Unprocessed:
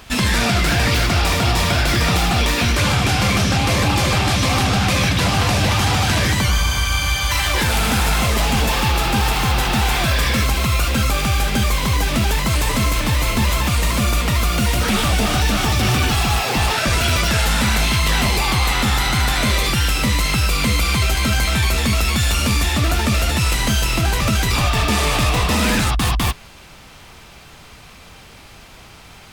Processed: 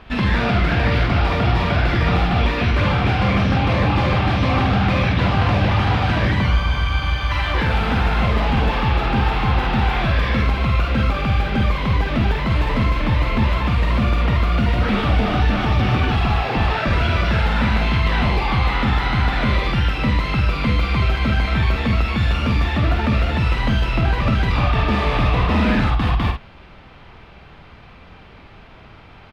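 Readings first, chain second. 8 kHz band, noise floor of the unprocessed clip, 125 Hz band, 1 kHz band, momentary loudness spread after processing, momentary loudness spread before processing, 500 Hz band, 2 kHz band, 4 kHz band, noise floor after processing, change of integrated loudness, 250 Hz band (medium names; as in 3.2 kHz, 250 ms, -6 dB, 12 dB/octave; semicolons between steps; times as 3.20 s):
under -20 dB, -42 dBFS, +0.5 dB, -0.5 dB, 2 LU, 2 LU, 0.0 dB, -3.0 dB, -8.0 dB, -43 dBFS, -1.5 dB, +0.5 dB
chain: distance through air 360 m; doubling 50 ms -6 dB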